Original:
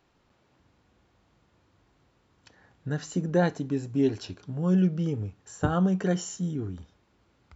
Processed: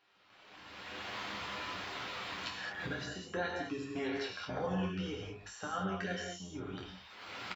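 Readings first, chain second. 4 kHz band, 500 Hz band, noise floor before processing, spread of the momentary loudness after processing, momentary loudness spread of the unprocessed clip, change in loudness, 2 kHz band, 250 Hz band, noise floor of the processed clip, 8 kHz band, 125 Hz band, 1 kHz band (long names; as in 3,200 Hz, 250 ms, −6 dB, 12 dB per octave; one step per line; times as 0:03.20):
+4.5 dB, −9.0 dB, −68 dBFS, 10 LU, 14 LU, −11.5 dB, +2.0 dB, −13.5 dB, −60 dBFS, can't be measured, −15.5 dB, −2.5 dB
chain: sub-octave generator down 1 octave, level −3 dB
camcorder AGC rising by 25 dB per second
gain on a spectral selection 0:03.96–0:04.66, 450–2,400 Hz +9 dB
reverb reduction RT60 1.2 s
first difference
downward compressor 2.5 to 1, threshold −57 dBFS, peak gain reduction 18 dB
leveller curve on the samples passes 1
high-frequency loss of the air 320 metres
on a send: ambience of single reflections 10 ms −5 dB, 26 ms −5.5 dB
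on the sum: reverb whose tail is shaped and stops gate 240 ms flat, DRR 0 dB
level +14.5 dB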